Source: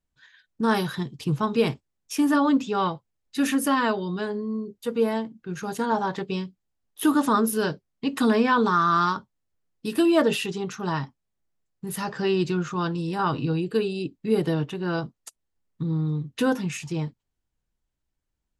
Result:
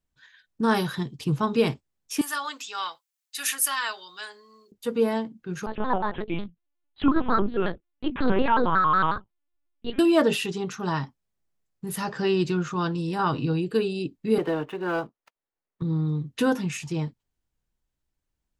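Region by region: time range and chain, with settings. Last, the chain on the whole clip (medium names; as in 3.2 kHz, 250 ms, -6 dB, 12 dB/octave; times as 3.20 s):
2.21–4.72 s: high-pass 1.4 kHz + treble shelf 5.5 kHz +11 dB
5.66–9.99 s: LPC vocoder at 8 kHz pitch kept + vibrato with a chosen wave square 5.5 Hz, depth 160 cents
14.38–15.82 s: dead-time distortion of 0.074 ms + three-band isolator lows -16 dB, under 310 Hz, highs -16 dB, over 2.8 kHz + waveshaping leveller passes 1
whole clip: none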